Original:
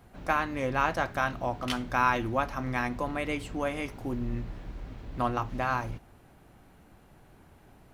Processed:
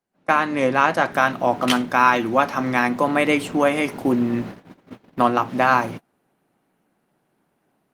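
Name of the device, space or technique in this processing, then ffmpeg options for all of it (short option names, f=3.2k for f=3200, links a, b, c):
video call: -af "highpass=f=160:w=0.5412,highpass=f=160:w=1.3066,dynaudnorm=f=110:g=3:m=16dB,agate=range=-23dB:threshold=-30dB:ratio=16:detection=peak,volume=-1dB" -ar 48000 -c:a libopus -b:a 32k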